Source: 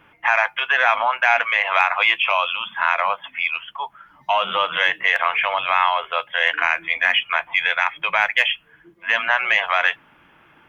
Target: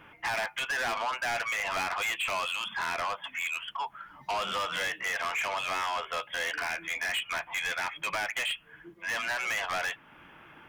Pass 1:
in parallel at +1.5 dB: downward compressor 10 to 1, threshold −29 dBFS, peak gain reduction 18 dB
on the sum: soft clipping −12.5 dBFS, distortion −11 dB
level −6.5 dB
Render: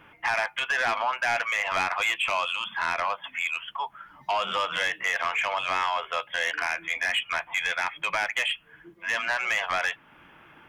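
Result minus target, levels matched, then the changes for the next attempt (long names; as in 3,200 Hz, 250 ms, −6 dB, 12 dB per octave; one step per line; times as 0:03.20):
soft clipping: distortion −6 dB
change: soft clipping −21 dBFS, distortion −5 dB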